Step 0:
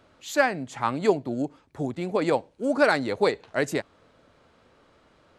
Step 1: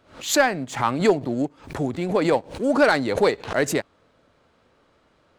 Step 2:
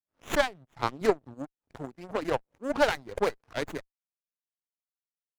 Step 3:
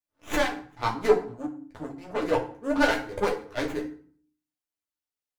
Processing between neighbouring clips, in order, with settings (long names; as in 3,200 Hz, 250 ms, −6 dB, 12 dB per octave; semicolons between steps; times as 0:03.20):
leveller curve on the samples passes 1; background raised ahead of every attack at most 130 dB per second
power curve on the samples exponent 2; reverb reduction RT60 1.2 s; windowed peak hold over 9 samples
feedback delay network reverb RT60 0.5 s, low-frequency decay 1.4×, high-frequency decay 0.75×, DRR 2 dB; multi-voice chorus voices 6, 0.57 Hz, delay 13 ms, depth 3.7 ms; level +3 dB